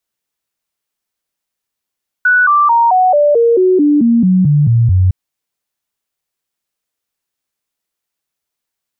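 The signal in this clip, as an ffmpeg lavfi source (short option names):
-f lavfi -i "aevalsrc='0.473*clip(min(mod(t,0.22),0.22-mod(t,0.22))/0.005,0,1)*sin(2*PI*1480*pow(2,-floor(t/0.22)/3)*mod(t,0.22))':d=2.86:s=44100"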